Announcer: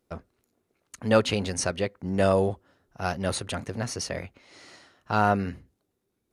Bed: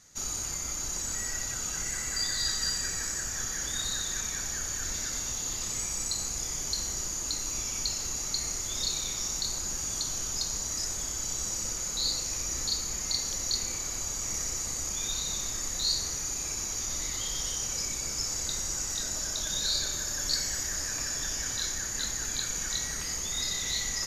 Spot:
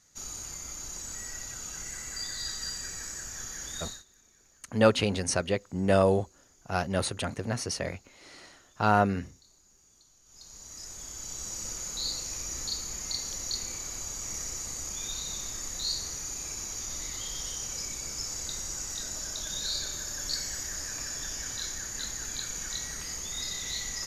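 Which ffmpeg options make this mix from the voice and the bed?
-filter_complex "[0:a]adelay=3700,volume=-0.5dB[a];[1:a]volume=19.5dB,afade=t=out:st=3.84:d=0.2:silence=0.0707946,afade=t=in:st=10.24:d=1.48:silence=0.0530884[b];[a][b]amix=inputs=2:normalize=0"

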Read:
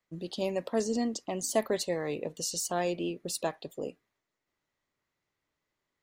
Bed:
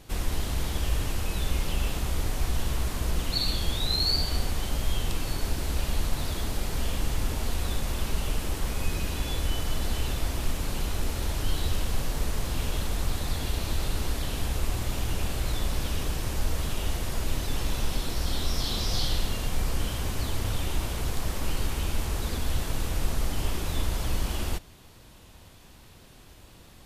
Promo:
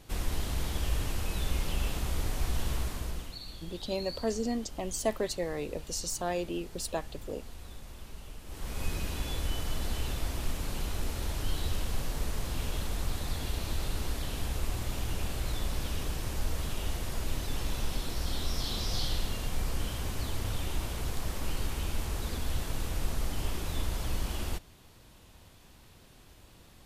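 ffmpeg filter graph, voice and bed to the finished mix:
-filter_complex "[0:a]adelay=3500,volume=-2dB[a];[1:a]volume=9dB,afade=t=out:st=2.75:d=0.63:silence=0.211349,afade=t=in:st=8.45:d=0.4:silence=0.237137[b];[a][b]amix=inputs=2:normalize=0"

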